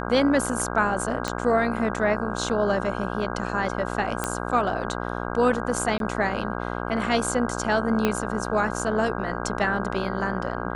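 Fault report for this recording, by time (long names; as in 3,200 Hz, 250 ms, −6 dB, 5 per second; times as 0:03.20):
mains buzz 60 Hz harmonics 27 −30 dBFS
0:01.28: click −11 dBFS
0:04.24: click −9 dBFS
0:05.98–0:06.00: drop-out 22 ms
0:08.05: click −8 dBFS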